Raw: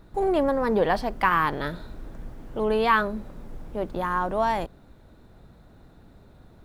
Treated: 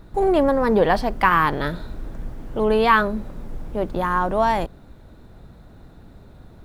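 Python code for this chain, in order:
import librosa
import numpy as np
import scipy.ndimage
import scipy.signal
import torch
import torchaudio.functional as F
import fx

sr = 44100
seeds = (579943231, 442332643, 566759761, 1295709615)

y = fx.low_shelf(x, sr, hz=170.0, db=3.0)
y = F.gain(torch.from_numpy(y), 4.5).numpy()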